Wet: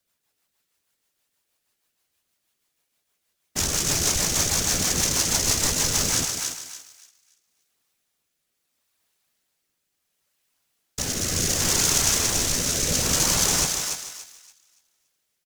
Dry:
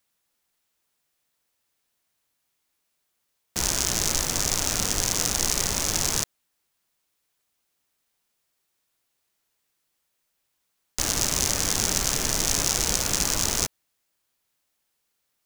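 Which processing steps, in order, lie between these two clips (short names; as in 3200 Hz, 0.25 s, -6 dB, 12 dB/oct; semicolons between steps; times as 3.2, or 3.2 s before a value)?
rotary speaker horn 6.3 Hz, later 0.7 Hz, at 6.72; whisperiser; doubler 12 ms -11.5 dB; thinning echo 0.286 s, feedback 28%, high-pass 880 Hz, level -4 dB; lo-fi delay 0.154 s, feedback 35%, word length 8-bit, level -10 dB; gain +3 dB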